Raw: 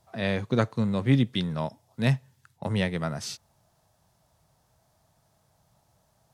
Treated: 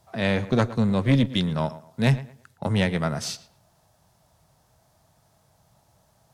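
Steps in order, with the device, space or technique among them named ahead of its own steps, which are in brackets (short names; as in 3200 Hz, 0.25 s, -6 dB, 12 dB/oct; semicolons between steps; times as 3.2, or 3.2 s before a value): rockabilly slapback (tube stage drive 16 dB, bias 0.35; tape echo 0.115 s, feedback 30%, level -14.5 dB, low-pass 2600 Hz); gain +5.5 dB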